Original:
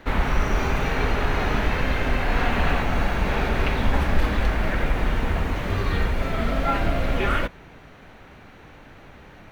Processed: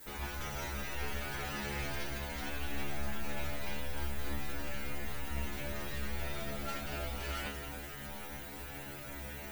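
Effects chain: one-sided fold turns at -20.5 dBFS; high shelf 4300 Hz +11 dB; notch 1100 Hz, Q 8.9; reverse; compressor 8:1, threshold -35 dBFS, peak gain reduction 21.5 dB; reverse; added noise violet -50 dBFS; metallic resonator 69 Hz, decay 0.67 s, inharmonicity 0.002; split-band echo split 1500 Hz, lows 0.277 s, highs 0.174 s, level -9 dB; gain +10 dB

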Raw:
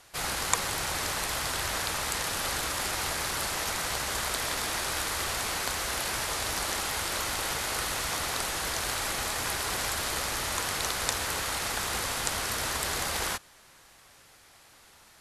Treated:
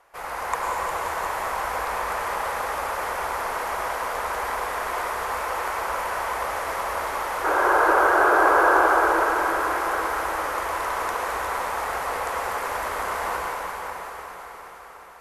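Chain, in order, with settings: graphic EQ 125/250/500/1000/2000/4000/8000 Hz -7/-3/+9/+11/+4/-8/-6 dB; painted sound noise, 7.44–8.86, 300–1700 Hz -15 dBFS; echo with dull and thin repeats by turns 0.178 s, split 1600 Hz, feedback 81%, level -6 dB; plate-style reverb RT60 3.5 s, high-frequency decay 0.85×, pre-delay 85 ms, DRR -2.5 dB; gain -8 dB

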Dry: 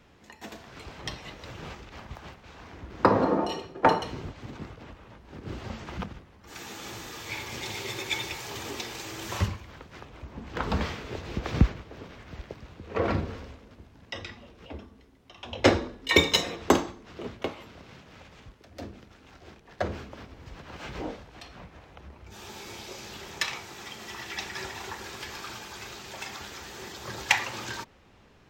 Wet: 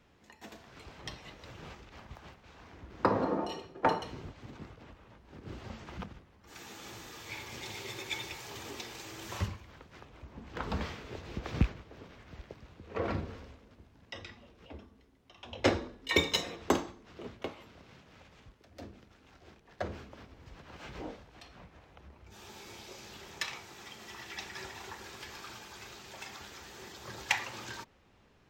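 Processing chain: rattling part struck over -16 dBFS, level -19 dBFS; gain -7 dB

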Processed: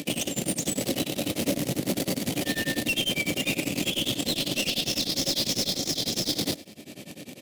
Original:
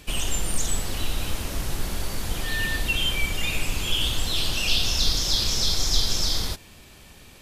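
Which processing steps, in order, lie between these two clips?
in parallel at -9.5 dB: fuzz box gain 43 dB, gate -38 dBFS; on the sum: compressor 2.5:1, threshold -20 dBFS, peak gain reduction 6 dB; on a send: feedback echo 0.102 s, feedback 53%, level -23 dB; on the sum: upward compressor, threshold -32 dBFS; HPF 150 Hz 24 dB/oct; low shelf 330 Hz +8.5 dB; hard clip -21.5 dBFS, distortion -12 dB; band shelf 1200 Hz -9 dB 1.1 oct; small resonant body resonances 290/550 Hz, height 8 dB, ringing for 35 ms; beating tremolo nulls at 10 Hz

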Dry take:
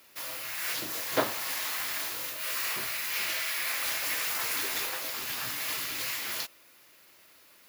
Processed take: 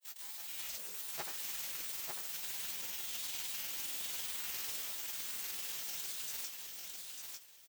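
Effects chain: pre-emphasis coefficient 0.8; notch 7400 Hz, Q 8.6; pitch shift +6.5 st; overloaded stage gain 35.5 dB; grains, pitch spread up and down by 3 st; on a send: feedback echo 0.898 s, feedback 20%, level -4 dB

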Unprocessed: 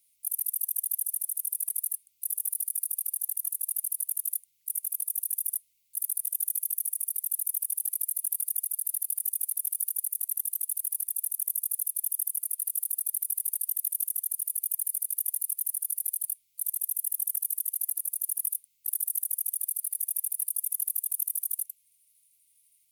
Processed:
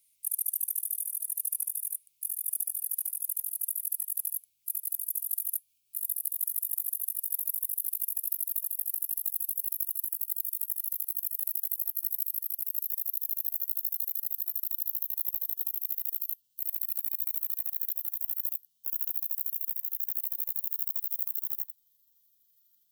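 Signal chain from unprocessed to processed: gliding pitch shift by +7 st starting unshifted

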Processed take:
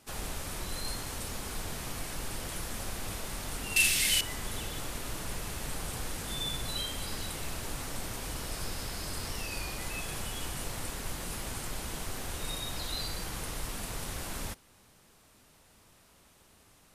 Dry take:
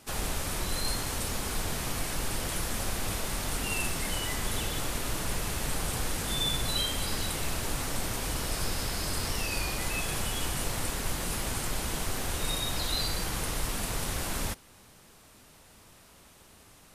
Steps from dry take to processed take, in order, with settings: 3.76–4.21 resonant high shelf 1700 Hz +13 dB, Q 1.5; gain -5.5 dB

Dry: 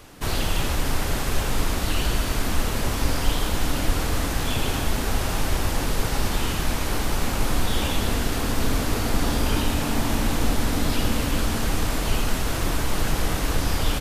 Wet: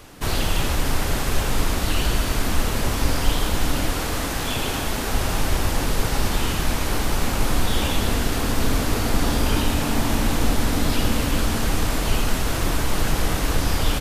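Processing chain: 3.88–5.14 low shelf 170 Hz -6 dB; gain +2 dB

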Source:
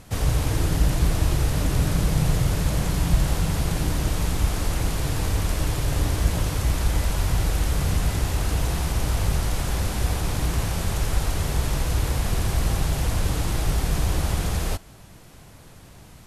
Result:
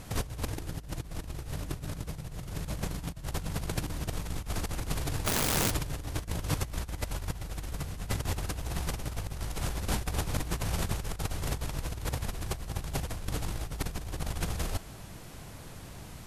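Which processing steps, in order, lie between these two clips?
5.26–5.71 wrapped overs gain 21 dB; negative-ratio compressor -27 dBFS, ratio -0.5; gain -5 dB

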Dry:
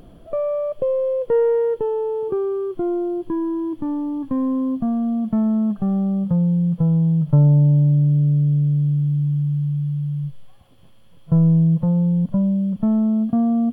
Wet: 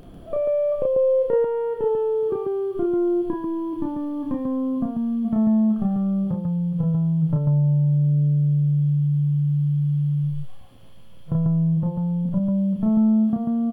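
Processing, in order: compressor 3:1, threshold -24 dBFS, peak gain reduction 10 dB; loudspeakers at several distances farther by 11 m -3 dB, 49 m -3 dB

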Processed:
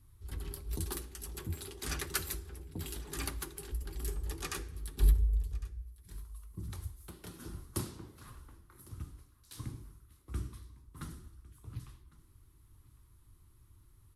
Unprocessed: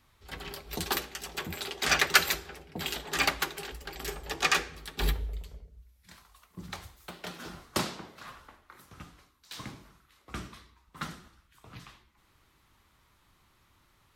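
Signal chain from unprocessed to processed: in parallel at 0 dB: compressor, threshold -39 dBFS, peak gain reduction 22 dB; on the sum: EQ curve 110 Hz 0 dB, 180 Hz -14 dB, 330 Hz -9 dB, 670 Hz -26 dB, 1000 Hz -19 dB, 2300 Hz -24 dB, 3600 Hz -21 dB, 7300 Hz -15 dB, 11000 Hz -2 dB, 16000 Hz -25 dB; echo 1.105 s -21.5 dB; gain +3.5 dB

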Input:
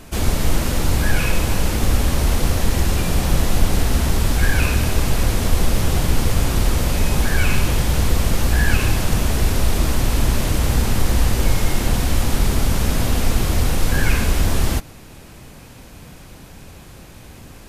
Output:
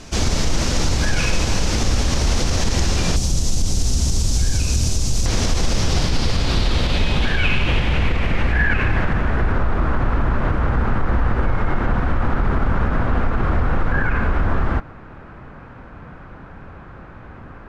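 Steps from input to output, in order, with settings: 3.16–5.26 EQ curve 110 Hz 0 dB, 1800 Hz -15 dB, 7500 Hz +4 dB; limiter -10.5 dBFS, peak gain reduction 7.5 dB; low-pass sweep 5900 Hz -> 1400 Hz, 5.69–9.64; gain +1.5 dB

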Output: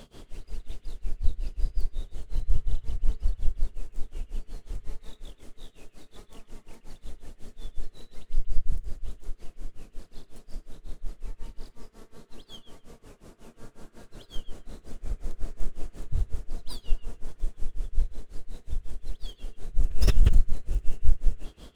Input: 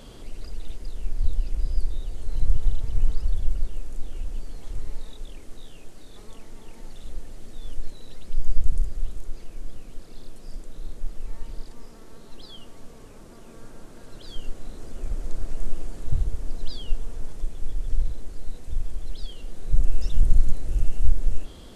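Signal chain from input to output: tracing distortion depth 0.072 ms; tremolo 5.5 Hz, depth 99%; delay with a stepping band-pass 0.128 s, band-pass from 2500 Hz, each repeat -0.7 oct, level -11.5 dB; reverb RT60 0.30 s, pre-delay 4 ms, DRR 15.5 dB; 19.88–20.38 sustainer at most 25 dB/s

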